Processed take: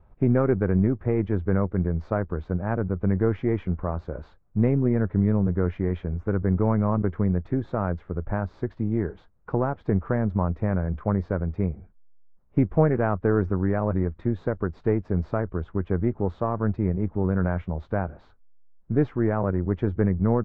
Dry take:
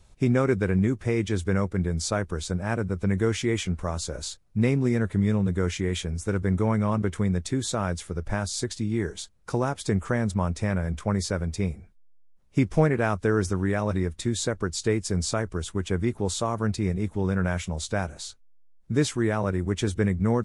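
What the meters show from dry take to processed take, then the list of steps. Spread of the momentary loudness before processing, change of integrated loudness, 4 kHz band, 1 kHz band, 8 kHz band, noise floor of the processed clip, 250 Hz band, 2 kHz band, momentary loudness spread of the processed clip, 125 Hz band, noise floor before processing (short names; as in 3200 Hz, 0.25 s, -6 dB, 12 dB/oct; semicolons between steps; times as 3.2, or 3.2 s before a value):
7 LU, +1.0 dB, under -20 dB, +0.5 dB, under -40 dB, -56 dBFS, +1.5 dB, -5.0 dB, 7 LU, +1.5 dB, -53 dBFS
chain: half-wave gain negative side -3 dB; dynamic EQ 1200 Hz, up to -3 dB, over -42 dBFS, Q 0.88; ladder low-pass 1700 Hz, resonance 20%; gain +7.5 dB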